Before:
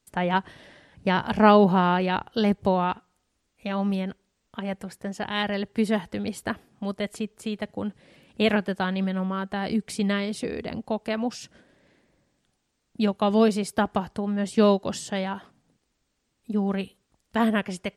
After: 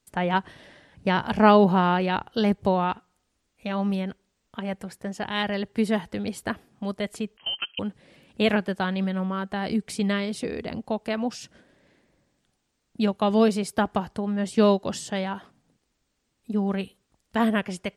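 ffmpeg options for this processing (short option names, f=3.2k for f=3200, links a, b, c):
-filter_complex "[0:a]asettb=1/sr,asplit=3[a][b][c];[a]atrim=end=7.374[d];[b]atrim=start=7.37:end=7.79,asetpts=PTS-STARTPTS,afade=t=in:d=0.004:c=qsin,afade=t=out:st=0.416:d=0.004:c=qsin,lowpass=f=2.8k:t=q:w=0.5098,lowpass=f=2.8k:t=q:w=0.6013,lowpass=f=2.8k:t=q:w=0.9,lowpass=f=2.8k:t=q:w=2.563,afreqshift=-3300[e];[c]atrim=start=7.786[f];[d][e]acrossfade=d=0.004:c1=hsin:c2=qsin[g];[g][f]acrossfade=d=0.004:c1=qsin:c2=hsin"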